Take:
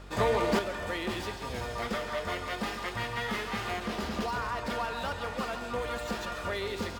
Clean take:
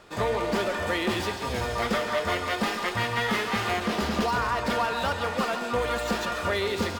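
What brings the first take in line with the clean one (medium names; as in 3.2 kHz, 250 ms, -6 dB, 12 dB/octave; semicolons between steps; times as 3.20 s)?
de-hum 47.9 Hz, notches 6; trim 0 dB, from 0.59 s +7 dB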